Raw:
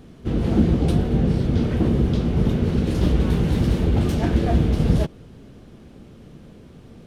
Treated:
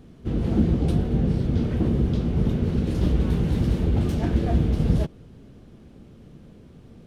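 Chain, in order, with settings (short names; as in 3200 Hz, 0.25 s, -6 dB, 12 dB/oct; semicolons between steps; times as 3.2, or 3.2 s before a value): low shelf 380 Hz +4 dB; gain -6 dB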